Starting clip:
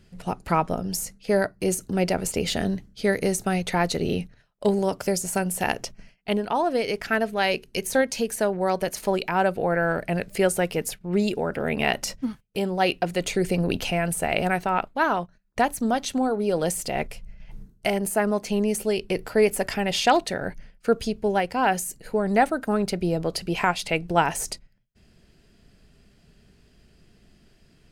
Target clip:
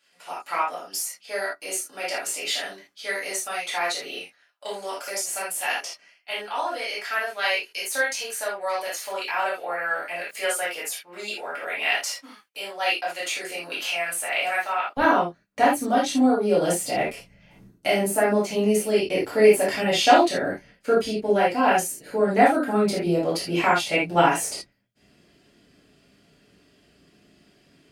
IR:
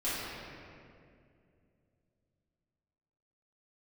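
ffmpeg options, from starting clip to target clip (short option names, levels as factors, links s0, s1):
-filter_complex "[0:a]asetnsamples=n=441:p=0,asendcmd='14.97 highpass f 150',highpass=1000[s0];[1:a]atrim=start_sample=2205,atrim=end_sample=3969[s1];[s0][s1]afir=irnorm=-1:irlink=0,volume=0.891"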